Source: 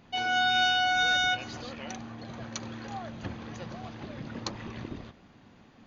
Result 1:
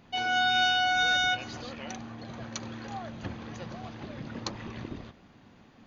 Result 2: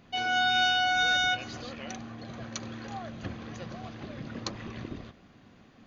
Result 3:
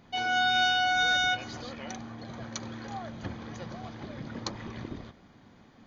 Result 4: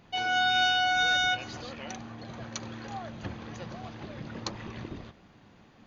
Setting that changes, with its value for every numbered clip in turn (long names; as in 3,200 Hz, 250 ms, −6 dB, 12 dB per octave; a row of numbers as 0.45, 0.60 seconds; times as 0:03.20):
notch filter, centre frequency: 8,000, 890, 2,700, 250 Hertz